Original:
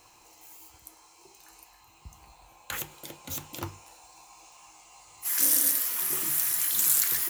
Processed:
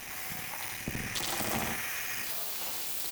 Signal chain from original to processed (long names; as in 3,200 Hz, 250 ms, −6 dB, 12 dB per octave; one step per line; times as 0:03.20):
sub-harmonics by changed cycles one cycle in 3, muted
downward compressor 4 to 1, threshold −42 dBFS, peak gain reduction 18.5 dB
on a send: bouncing-ball delay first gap 170 ms, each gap 0.7×, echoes 5
on the sum: leveller curve on the samples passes 5
wrong playback speed 33 rpm record played at 78 rpm